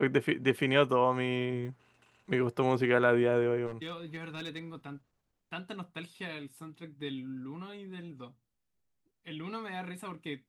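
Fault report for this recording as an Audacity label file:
1.650000	1.650000	dropout 2.6 ms
3.660000	4.590000	clipped -32.5 dBFS

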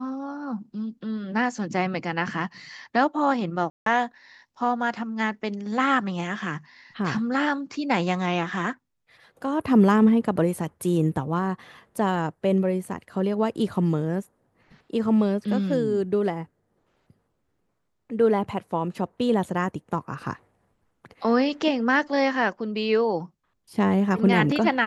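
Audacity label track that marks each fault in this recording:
3.700000	3.860000	dropout 163 ms

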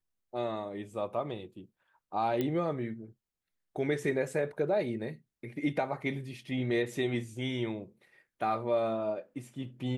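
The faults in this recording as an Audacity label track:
2.410000	2.410000	pop -19 dBFS

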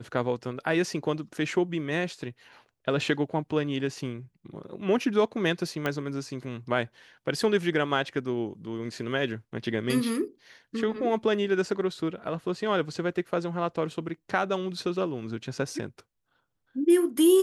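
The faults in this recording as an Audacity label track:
5.860000	5.860000	pop -15 dBFS

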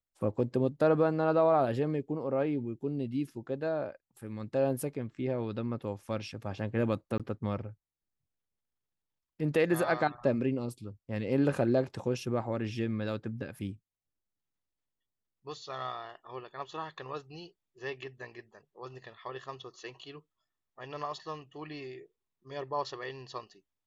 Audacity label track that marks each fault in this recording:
7.180000	7.200000	dropout 17 ms

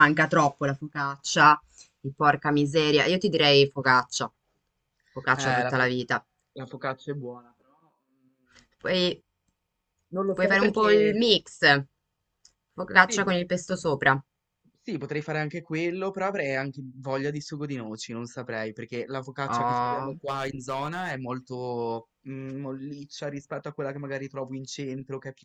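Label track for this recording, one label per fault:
20.280000	21.110000	clipped -23.5 dBFS

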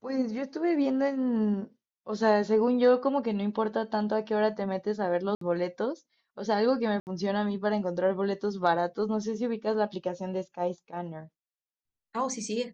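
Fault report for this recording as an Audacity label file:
5.350000	5.410000	dropout 63 ms
7.000000	7.070000	dropout 69 ms

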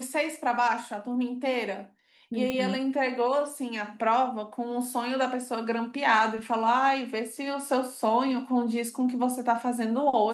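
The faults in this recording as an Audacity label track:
2.500000	2.500000	pop -16 dBFS

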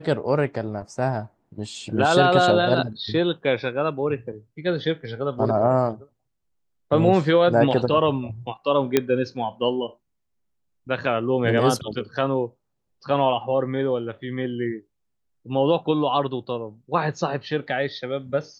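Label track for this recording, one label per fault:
8.970000	8.970000	pop -4 dBFS

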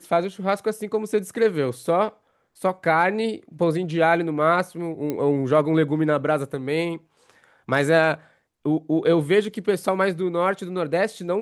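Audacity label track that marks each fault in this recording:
5.100000	5.100000	pop -14 dBFS

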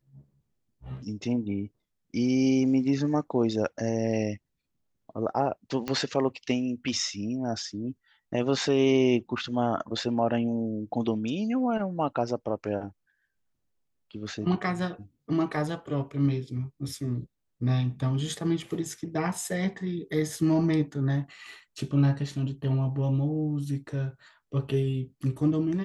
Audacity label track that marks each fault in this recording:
5.880000	5.880000	pop -16 dBFS

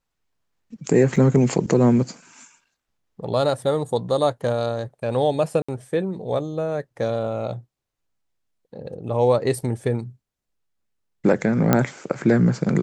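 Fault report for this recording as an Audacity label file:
1.160000	1.160000	dropout 4.5 ms
5.620000	5.680000	dropout 65 ms
11.730000	11.730000	pop -3 dBFS

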